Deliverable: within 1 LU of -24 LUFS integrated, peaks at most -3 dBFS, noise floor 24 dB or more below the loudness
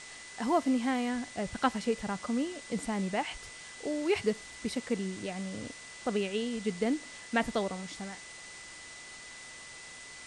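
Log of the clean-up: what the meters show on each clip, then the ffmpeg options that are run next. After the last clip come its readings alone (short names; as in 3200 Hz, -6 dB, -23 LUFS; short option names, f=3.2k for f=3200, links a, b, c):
steady tone 2000 Hz; tone level -49 dBFS; noise floor -48 dBFS; noise floor target -58 dBFS; loudness -33.5 LUFS; peak -13.0 dBFS; loudness target -24.0 LUFS
-> -af "bandreject=f=2k:w=30"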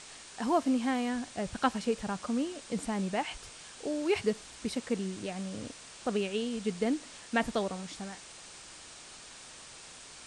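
steady tone none; noise floor -50 dBFS; noise floor target -58 dBFS
-> -af "afftdn=nr=8:nf=-50"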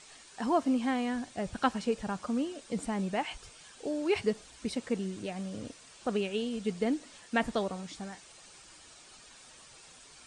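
noise floor -55 dBFS; noise floor target -58 dBFS
-> -af "afftdn=nr=6:nf=-55"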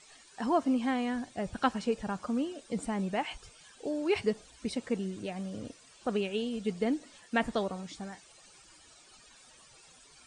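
noise floor -58 dBFS; loudness -33.5 LUFS; peak -13.0 dBFS; loudness target -24.0 LUFS
-> -af "volume=9.5dB"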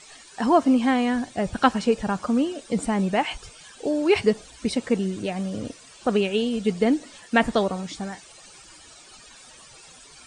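loudness -24.0 LUFS; peak -3.5 dBFS; noise floor -49 dBFS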